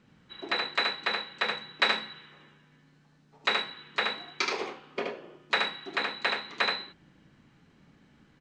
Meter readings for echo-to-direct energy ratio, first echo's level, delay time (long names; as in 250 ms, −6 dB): −3.5 dB, −3.5 dB, 75 ms